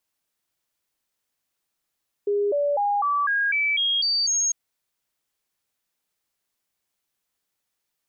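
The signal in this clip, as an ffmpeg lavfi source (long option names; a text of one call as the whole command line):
ffmpeg -f lavfi -i "aevalsrc='0.106*clip(min(mod(t,0.25),0.25-mod(t,0.25))/0.005,0,1)*sin(2*PI*408*pow(2,floor(t/0.25)/2)*mod(t,0.25))':duration=2.25:sample_rate=44100" out.wav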